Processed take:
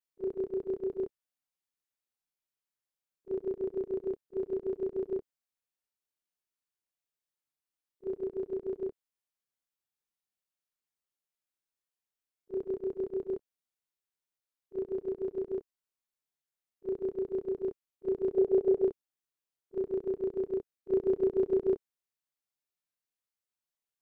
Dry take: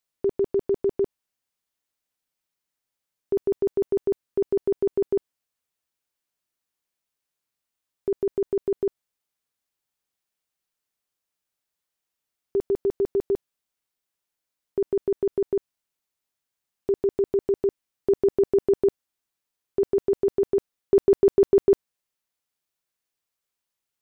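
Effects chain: short-time reversal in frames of 57 ms; spectral gain 18.37–18.86, 380–840 Hz +7 dB; pre-echo 34 ms -13 dB; gain -7 dB

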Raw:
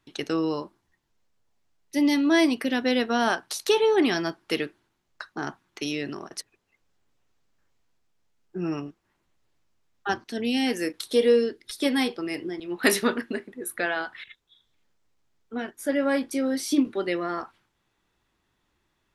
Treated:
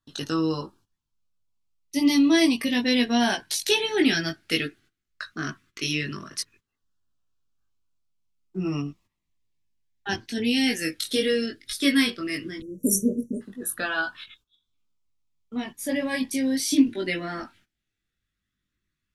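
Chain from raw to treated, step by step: chorus voices 4, 0.18 Hz, delay 20 ms, depth 1.7 ms; gate -59 dBFS, range -14 dB; band shelf 540 Hz -8.5 dB; LFO notch saw down 0.15 Hz 700–2300 Hz; spectral delete 12.61–13.42, 630–5600 Hz; gain +8.5 dB

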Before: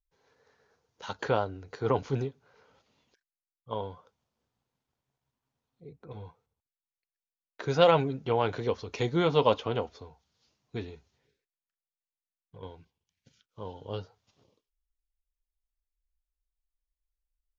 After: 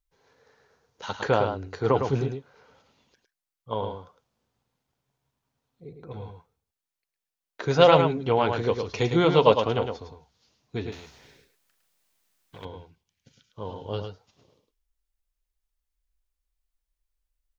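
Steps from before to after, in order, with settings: on a send: echo 0.107 s -6.5 dB; 10.92–12.65 on the sum: spectral compressor 2:1; gain +4.5 dB

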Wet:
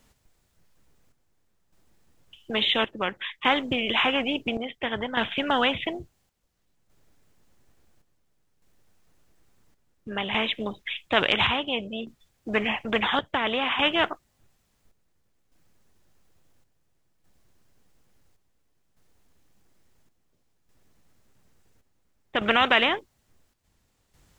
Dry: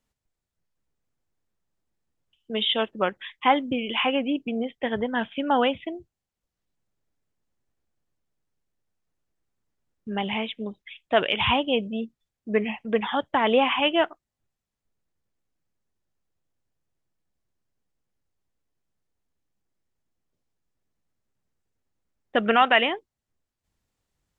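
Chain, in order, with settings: chopper 0.58 Hz, depth 60%, duty 65%; spectral compressor 2:1

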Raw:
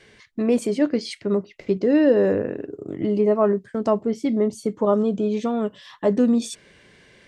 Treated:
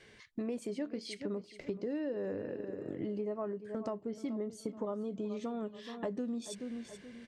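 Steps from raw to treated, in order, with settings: on a send: feedback echo 0.428 s, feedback 30%, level -16 dB; on the sum: compressor 5:1, threshold -29 dBFS, peak gain reduction 15 dB; gain -6.5 dB

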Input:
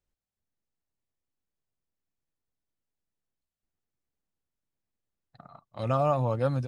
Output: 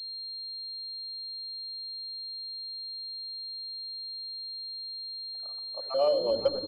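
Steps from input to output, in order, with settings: random spectral dropouts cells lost 34%; resonant high-pass 510 Hz, resonance Q 4.6; frequency-shifting echo 88 ms, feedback 61%, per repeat -120 Hz, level -15 dB; on a send at -11 dB: reverb RT60 1.6 s, pre-delay 3 ms; on the sum: pulse-width modulation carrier 4200 Hz; gain -7.5 dB

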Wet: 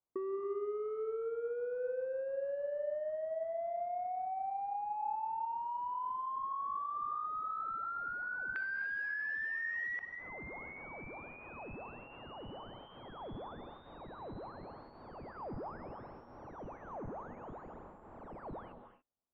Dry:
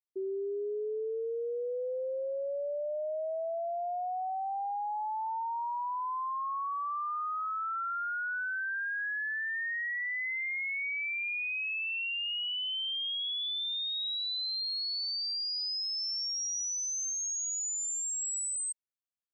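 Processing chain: half-waves squared off; LPF 1100 Hz 24 dB/oct, from 8.56 s 2300 Hz, from 9.99 s 1000 Hz; compressor 5:1, threshold -49 dBFS, peak gain reduction 15 dB; non-linear reverb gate 0.31 s rising, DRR 8 dB; gain +9 dB

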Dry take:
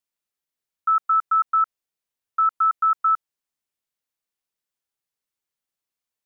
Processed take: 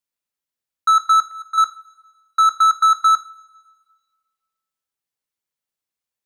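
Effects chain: sample leveller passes 2; 1.17–1.58 auto swell 0.739 s; two-slope reverb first 0.32 s, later 1.6 s, from -18 dB, DRR 9.5 dB; gain +3 dB

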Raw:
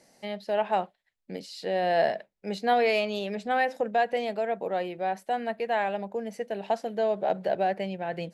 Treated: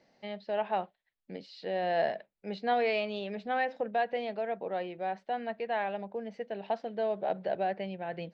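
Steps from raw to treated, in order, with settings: LPF 4400 Hz 24 dB/oct; gain -5 dB

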